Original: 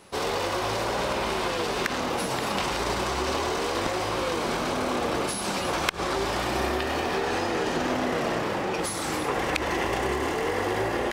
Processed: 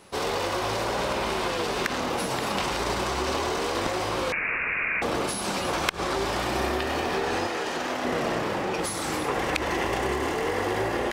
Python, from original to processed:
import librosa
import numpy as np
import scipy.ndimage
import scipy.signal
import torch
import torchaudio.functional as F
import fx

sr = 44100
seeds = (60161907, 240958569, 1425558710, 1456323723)

y = fx.freq_invert(x, sr, carrier_hz=2700, at=(4.32, 5.02))
y = fx.low_shelf(y, sr, hz=320.0, db=-11.5, at=(7.47, 8.05))